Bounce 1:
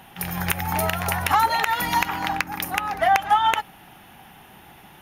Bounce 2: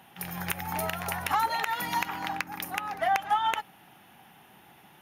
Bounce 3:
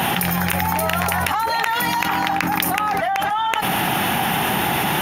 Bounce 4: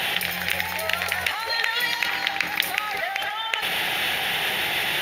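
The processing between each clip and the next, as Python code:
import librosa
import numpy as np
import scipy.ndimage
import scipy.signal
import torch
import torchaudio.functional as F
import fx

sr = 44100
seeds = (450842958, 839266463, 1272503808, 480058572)

y1 = scipy.signal.sosfilt(scipy.signal.butter(2, 110.0, 'highpass', fs=sr, output='sos'), x)
y1 = y1 * librosa.db_to_amplitude(-7.5)
y2 = fx.env_flatten(y1, sr, amount_pct=100)
y2 = y2 * librosa.db_to_amplitude(1.0)
y3 = fx.graphic_eq(y2, sr, hz=(125, 250, 500, 1000, 2000, 4000), db=(-6, -11, 7, -7, 9, 11))
y3 = fx.rev_schroeder(y3, sr, rt60_s=3.2, comb_ms=33, drr_db=9.0)
y3 = y3 * librosa.db_to_amplitude(-9.5)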